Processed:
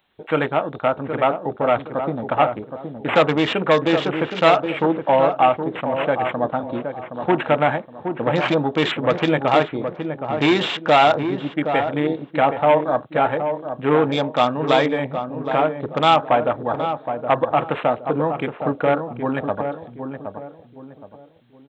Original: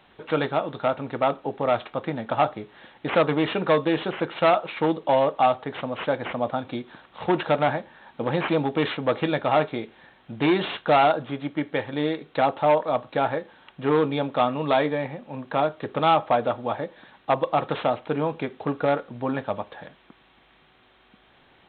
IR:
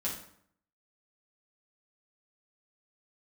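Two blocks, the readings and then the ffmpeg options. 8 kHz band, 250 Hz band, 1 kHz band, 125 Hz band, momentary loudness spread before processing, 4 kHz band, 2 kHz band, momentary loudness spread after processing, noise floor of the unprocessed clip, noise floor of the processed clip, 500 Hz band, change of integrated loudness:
n/a, +4.5 dB, +4.5 dB, +4.5 dB, 11 LU, +6.5 dB, +6.0 dB, 10 LU, -58 dBFS, -45 dBFS, +4.5 dB, +4.5 dB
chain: -filter_complex "[0:a]aemphasis=mode=production:type=75kf,afwtdn=0.0224,asplit=2[a][b];[b]adelay=769,lowpass=f=1k:p=1,volume=-6.5dB,asplit=2[c][d];[d]adelay=769,lowpass=f=1k:p=1,volume=0.36,asplit=2[e][f];[f]adelay=769,lowpass=f=1k:p=1,volume=0.36,asplit=2[g][h];[h]adelay=769,lowpass=f=1k:p=1,volume=0.36[i];[a][c][e][g][i]amix=inputs=5:normalize=0,volume=3.5dB"

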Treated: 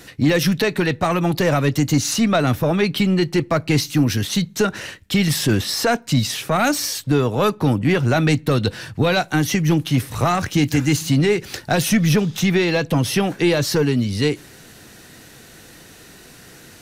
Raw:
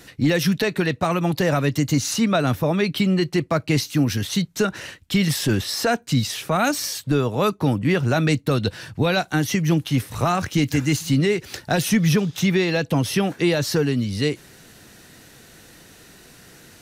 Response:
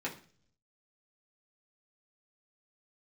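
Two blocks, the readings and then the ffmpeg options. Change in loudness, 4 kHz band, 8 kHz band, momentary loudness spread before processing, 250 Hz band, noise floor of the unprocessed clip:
+2.5 dB, +2.5 dB, +3.0 dB, 4 LU, +2.0 dB, -49 dBFS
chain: -filter_complex "[0:a]aeval=exprs='0.376*(cos(1*acos(clip(val(0)/0.376,-1,1)))-cos(1*PI/2))+0.0376*(cos(2*acos(clip(val(0)/0.376,-1,1)))-cos(2*PI/2))+0.015*(cos(5*acos(clip(val(0)/0.376,-1,1)))-cos(5*PI/2))':c=same,asplit=2[a][b];[1:a]atrim=start_sample=2205[c];[b][c]afir=irnorm=-1:irlink=0,volume=-22.5dB[d];[a][d]amix=inputs=2:normalize=0,volume=1.5dB"

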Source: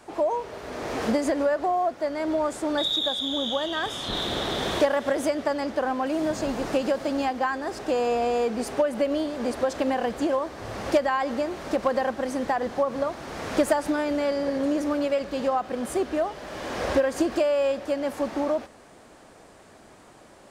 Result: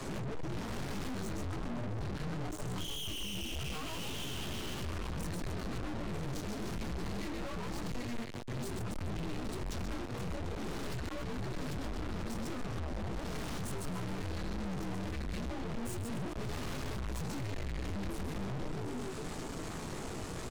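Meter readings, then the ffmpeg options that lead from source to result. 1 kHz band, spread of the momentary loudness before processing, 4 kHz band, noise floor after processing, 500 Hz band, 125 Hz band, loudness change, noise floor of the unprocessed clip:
-17.0 dB, 6 LU, -12.5 dB, -41 dBFS, -19.5 dB, +5.5 dB, -13.5 dB, -51 dBFS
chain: -filter_complex "[0:a]asplit=7[a][b][c][d][e][f][g];[b]adelay=133,afreqshift=-130,volume=-4.5dB[h];[c]adelay=266,afreqshift=-260,volume=-11.1dB[i];[d]adelay=399,afreqshift=-390,volume=-17.6dB[j];[e]adelay=532,afreqshift=-520,volume=-24.2dB[k];[f]adelay=665,afreqshift=-650,volume=-30.7dB[l];[g]adelay=798,afreqshift=-780,volume=-37.3dB[m];[a][h][i][j][k][l][m]amix=inputs=7:normalize=0,acompressor=threshold=-33dB:ratio=6,flanger=delay=16:depth=5.4:speed=0.19,afreqshift=-480,aeval=exprs='(tanh(562*val(0)+0.7)-tanh(0.7))/562':c=same,acrossover=split=240[n][o];[o]acompressor=threshold=-57dB:ratio=6[p];[n][p]amix=inputs=2:normalize=0,volume=18dB"

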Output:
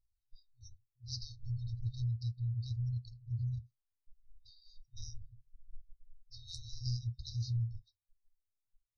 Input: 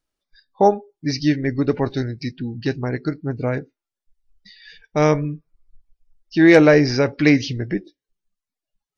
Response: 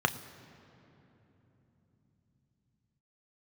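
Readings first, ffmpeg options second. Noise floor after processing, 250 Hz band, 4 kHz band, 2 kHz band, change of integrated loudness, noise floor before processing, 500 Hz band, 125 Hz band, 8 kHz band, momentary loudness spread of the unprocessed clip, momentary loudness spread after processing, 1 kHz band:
under -85 dBFS, under -30 dB, -16.5 dB, under -40 dB, -20.5 dB, under -85 dBFS, under -40 dB, -11.0 dB, n/a, 15 LU, 16 LU, under -40 dB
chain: -af "afftfilt=real='re*(1-between(b*sr/4096,120,3700))':imag='im*(1-between(b*sr/4096,120,3700))':win_size=4096:overlap=0.75,tiltshelf=f=760:g=9,acompressor=threshold=-28dB:ratio=3,volume=-5.5dB"

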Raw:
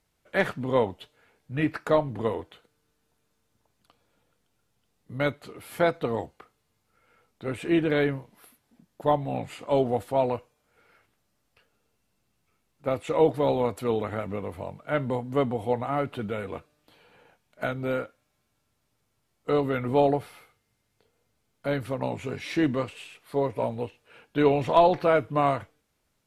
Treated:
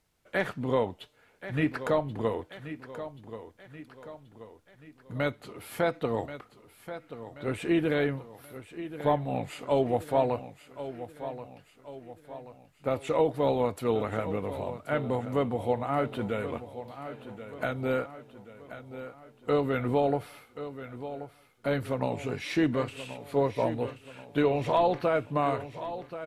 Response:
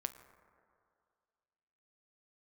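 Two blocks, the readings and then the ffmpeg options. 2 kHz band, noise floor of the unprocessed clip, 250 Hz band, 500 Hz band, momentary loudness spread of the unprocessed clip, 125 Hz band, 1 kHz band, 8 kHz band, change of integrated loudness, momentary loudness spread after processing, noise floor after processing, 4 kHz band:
-2.0 dB, -74 dBFS, -1.5 dB, -2.5 dB, 13 LU, -1.5 dB, -3.0 dB, n/a, -3.5 dB, 19 LU, -61 dBFS, -2.0 dB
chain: -filter_complex "[0:a]alimiter=limit=-15dB:level=0:latency=1:release=322,asplit=2[a][b];[b]aecho=0:1:1081|2162|3243|4324|5405:0.237|0.116|0.0569|0.0279|0.0137[c];[a][c]amix=inputs=2:normalize=0"

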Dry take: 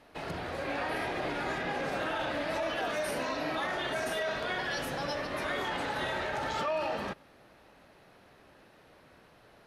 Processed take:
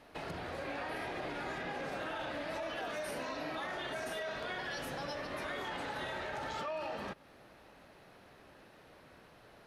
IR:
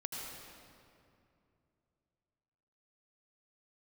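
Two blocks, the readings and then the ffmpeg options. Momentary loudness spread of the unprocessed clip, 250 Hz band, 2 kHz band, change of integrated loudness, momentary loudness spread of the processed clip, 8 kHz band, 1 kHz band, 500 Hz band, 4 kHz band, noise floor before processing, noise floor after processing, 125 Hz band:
3 LU, -6.0 dB, -6.5 dB, -6.5 dB, 19 LU, -6.5 dB, -6.5 dB, -6.5 dB, -6.5 dB, -59 dBFS, -60 dBFS, -6.0 dB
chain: -af "acompressor=threshold=-42dB:ratio=2"

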